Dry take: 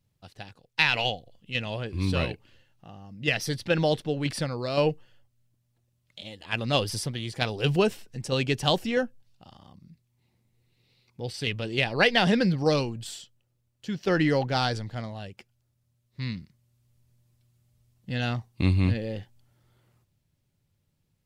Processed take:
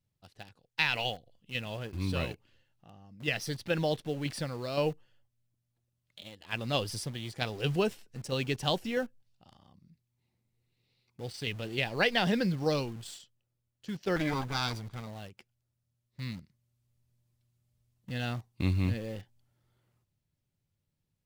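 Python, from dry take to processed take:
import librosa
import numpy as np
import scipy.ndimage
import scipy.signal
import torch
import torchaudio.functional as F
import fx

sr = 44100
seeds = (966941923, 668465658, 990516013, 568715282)

p1 = fx.lower_of_two(x, sr, delay_ms=0.83, at=(14.16, 15.07))
p2 = fx.quant_dither(p1, sr, seeds[0], bits=6, dither='none')
p3 = p1 + (p2 * 10.0 ** (-9.0 / 20.0))
y = p3 * 10.0 ** (-8.5 / 20.0)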